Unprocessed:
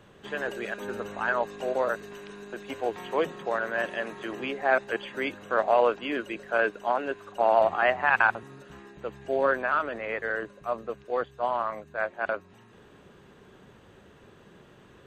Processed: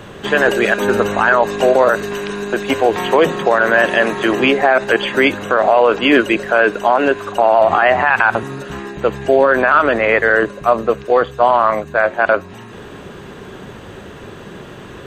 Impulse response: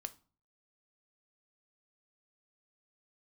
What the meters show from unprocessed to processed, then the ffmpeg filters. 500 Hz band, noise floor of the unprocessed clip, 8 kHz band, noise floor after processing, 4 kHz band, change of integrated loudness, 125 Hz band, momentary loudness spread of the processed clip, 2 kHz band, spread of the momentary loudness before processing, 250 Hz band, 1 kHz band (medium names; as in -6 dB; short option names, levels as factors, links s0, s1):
+14.0 dB, -55 dBFS, no reading, -35 dBFS, +17.5 dB, +14.0 dB, +18.0 dB, 10 LU, +13.5 dB, 14 LU, +18.0 dB, +13.0 dB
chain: -filter_complex "[0:a]asplit=2[s0][s1];[1:a]atrim=start_sample=2205[s2];[s1][s2]afir=irnorm=-1:irlink=0,volume=0.422[s3];[s0][s3]amix=inputs=2:normalize=0,alimiter=level_in=8.41:limit=0.891:release=50:level=0:latency=1,volume=0.891"